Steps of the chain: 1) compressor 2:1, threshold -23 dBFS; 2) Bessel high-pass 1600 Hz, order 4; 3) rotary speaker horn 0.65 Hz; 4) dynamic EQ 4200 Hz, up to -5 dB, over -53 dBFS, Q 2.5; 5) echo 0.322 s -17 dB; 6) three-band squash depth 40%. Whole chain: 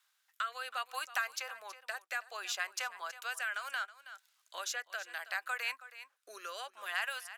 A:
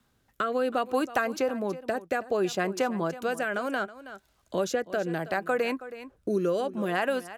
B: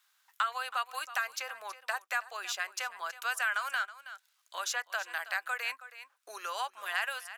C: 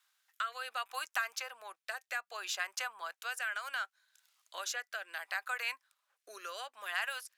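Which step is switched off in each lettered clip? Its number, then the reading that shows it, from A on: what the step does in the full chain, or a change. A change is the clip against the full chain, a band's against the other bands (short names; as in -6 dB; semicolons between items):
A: 2, 500 Hz band +22.0 dB; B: 3, 1 kHz band +2.5 dB; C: 5, momentary loudness spread change -3 LU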